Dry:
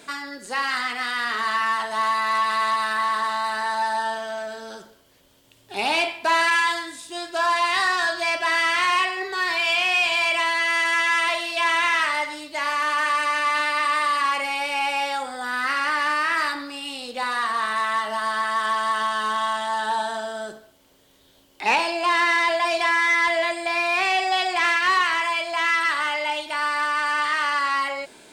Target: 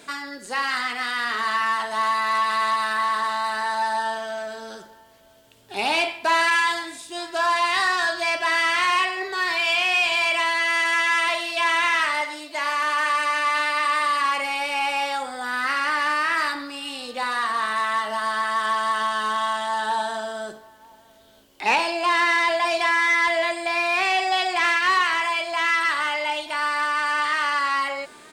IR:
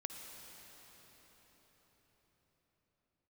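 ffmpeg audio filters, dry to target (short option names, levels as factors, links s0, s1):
-filter_complex "[0:a]asettb=1/sr,asplit=3[s0][s1][s2];[s0]atrim=end=12.214[s3];[s1]atrim=start=12.21:end=14.01,asetpts=PTS-STARTPTS,afade=t=in:d=0.004:c=qsin,afade=t=out:st=1.796:d=0.004:c=qsin,highpass=240[s4];[s2]atrim=start=14.006[s5];[s3][s4]acrossfade=d=0.004:c1=hsin:c2=qsin[s6];[s6][s5]acrossfade=d=0.004:c1=qsin:c2=hsin,asplit=2[s7][s8];[s8]adelay=932.9,volume=0.0562,highshelf=f=4000:g=-21[s9];[s7][s9]amix=inputs=2:normalize=0"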